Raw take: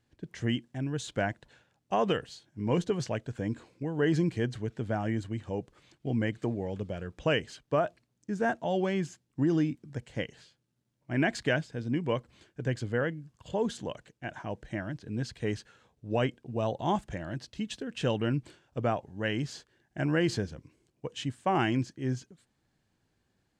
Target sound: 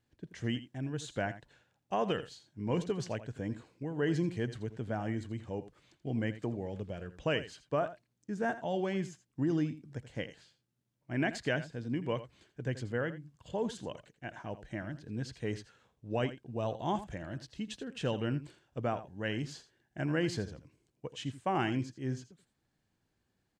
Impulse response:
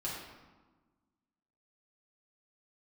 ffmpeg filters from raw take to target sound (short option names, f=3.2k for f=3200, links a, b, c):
-af "aecho=1:1:83:0.2,volume=-4.5dB"